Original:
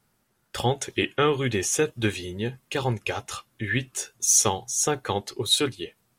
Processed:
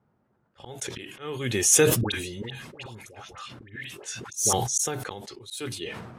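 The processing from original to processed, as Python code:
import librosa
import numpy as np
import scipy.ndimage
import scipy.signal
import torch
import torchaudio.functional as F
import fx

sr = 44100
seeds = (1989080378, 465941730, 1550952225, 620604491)

y = scipy.signal.sosfilt(scipy.signal.butter(2, 66.0, 'highpass', fs=sr, output='sos'), x)
y = fx.env_lowpass(y, sr, base_hz=970.0, full_db=-22.0)
y = fx.high_shelf(y, sr, hz=6600.0, db=11.0)
y = fx.auto_swell(y, sr, attack_ms=603.0)
y = fx.dispersion(y, sr, late='highs', ms=95.0, hz=1100.0, at=(2.01, 4.53))
y = fx.sustainer(y, sr, db_per_s=42.0)
y = F.gain(torch.from_numpy(y), 2.5).numpy()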